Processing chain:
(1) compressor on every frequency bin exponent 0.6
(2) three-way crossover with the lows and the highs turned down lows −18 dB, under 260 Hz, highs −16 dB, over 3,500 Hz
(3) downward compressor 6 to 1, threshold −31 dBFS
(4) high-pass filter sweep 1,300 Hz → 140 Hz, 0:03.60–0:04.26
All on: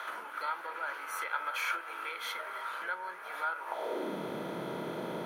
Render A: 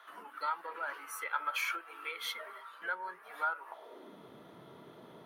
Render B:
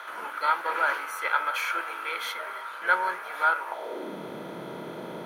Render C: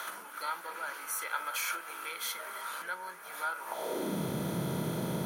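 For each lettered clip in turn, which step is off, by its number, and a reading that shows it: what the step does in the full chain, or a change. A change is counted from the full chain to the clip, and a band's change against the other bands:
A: 1, 250 Hz band −12.0 dB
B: 3, average gain reduction 5.0 dB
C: 2, 125 Hz band +11.0 dB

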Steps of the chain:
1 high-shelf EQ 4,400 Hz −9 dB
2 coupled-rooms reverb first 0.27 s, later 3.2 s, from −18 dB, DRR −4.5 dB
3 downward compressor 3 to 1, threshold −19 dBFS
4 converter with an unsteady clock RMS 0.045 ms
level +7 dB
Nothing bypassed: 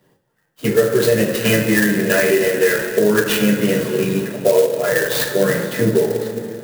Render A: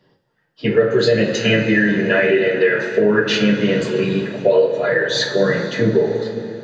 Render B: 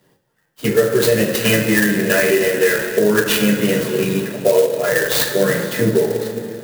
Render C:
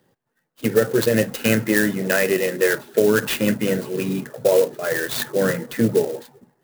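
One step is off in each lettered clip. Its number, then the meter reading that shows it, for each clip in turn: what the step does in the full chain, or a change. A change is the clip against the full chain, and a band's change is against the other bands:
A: 4, 8 kHz band −9.5 dB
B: 1, 4 kHz band +2.0 dB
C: 2, change in momentary loudness spread +2 LU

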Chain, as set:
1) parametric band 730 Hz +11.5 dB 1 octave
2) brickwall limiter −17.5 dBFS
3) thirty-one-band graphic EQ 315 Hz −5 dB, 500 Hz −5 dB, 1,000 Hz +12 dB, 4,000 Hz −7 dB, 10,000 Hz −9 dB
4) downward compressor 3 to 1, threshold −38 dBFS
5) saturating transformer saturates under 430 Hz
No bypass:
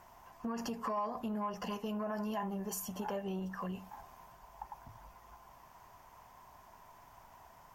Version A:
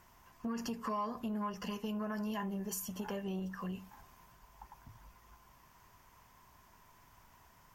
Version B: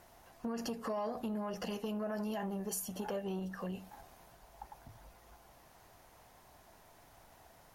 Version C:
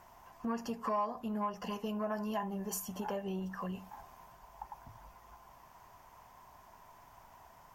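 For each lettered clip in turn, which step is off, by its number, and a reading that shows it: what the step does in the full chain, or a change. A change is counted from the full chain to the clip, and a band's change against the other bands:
1, 500 Hz band −3.5 dB
3, change in momentary loudness spread −2 LU
2, change in momentary loudness spread +1 LU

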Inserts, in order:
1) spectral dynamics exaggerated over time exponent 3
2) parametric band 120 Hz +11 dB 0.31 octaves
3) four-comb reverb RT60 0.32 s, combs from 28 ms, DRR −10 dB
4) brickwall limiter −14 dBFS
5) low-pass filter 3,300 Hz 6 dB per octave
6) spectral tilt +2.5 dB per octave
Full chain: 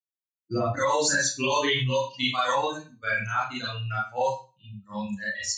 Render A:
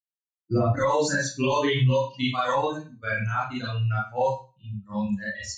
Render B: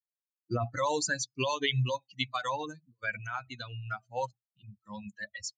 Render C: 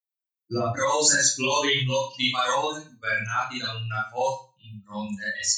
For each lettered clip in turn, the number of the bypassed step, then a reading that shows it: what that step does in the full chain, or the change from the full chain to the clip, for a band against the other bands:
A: 6, 125 Hz band +8.5 dB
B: 3, change in momentary loudness spread +1 LU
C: 5, change in crest factor +5.0 dB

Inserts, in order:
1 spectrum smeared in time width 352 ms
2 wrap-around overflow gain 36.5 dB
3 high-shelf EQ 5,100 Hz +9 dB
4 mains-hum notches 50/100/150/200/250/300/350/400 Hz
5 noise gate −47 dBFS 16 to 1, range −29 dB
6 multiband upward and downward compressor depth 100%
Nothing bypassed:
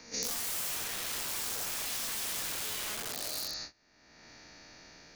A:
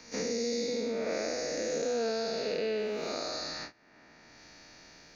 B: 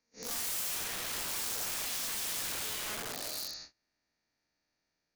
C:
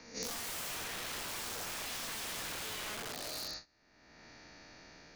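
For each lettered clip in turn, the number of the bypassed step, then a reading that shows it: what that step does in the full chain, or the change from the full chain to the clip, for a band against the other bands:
2, change in crest factor −8.0 dB
6, change in crest factor −10.0 dB
3, 8 kHz band −6.5 dB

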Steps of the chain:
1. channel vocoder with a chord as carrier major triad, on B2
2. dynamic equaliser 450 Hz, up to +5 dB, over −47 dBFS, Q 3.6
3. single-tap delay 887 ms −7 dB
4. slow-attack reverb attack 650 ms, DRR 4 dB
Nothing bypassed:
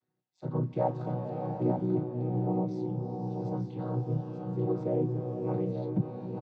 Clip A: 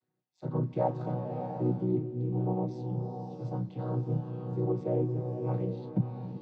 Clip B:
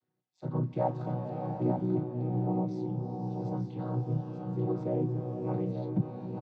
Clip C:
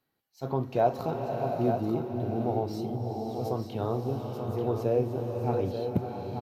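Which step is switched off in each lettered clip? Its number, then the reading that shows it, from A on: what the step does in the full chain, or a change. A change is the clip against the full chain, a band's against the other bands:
3, echo-to-direct ratio −1.5 dB to −4.0 dB
2, 500 Hz band −2.0 dB
1, 1 kHz band +6.0 dB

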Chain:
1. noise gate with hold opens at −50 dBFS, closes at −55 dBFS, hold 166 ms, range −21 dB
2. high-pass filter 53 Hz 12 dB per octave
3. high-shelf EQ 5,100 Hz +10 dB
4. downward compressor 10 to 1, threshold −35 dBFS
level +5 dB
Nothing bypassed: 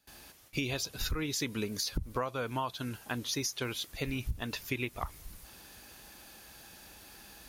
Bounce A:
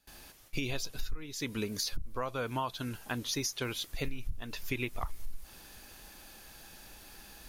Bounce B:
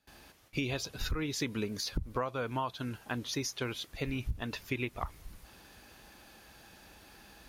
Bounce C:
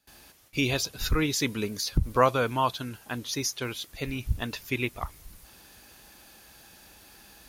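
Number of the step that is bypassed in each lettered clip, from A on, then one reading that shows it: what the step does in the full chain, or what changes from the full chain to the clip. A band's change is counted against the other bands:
2, change in crest factor −2.0 dB
3, 8 kHz band −4.0 dB
4, average gain reduction 3.0 dB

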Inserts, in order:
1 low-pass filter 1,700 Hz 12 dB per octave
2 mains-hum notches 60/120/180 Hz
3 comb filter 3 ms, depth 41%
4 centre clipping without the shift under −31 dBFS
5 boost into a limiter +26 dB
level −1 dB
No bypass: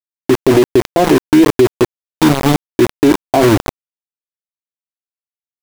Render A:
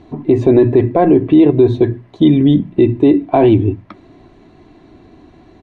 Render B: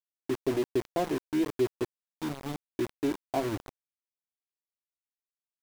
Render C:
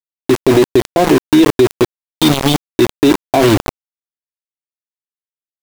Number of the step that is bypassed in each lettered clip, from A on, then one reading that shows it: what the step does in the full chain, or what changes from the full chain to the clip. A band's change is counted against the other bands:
4, distortion level −10 dB
5, change in crest factor +4.5 dB
1, 4 kHz band +5.0 dB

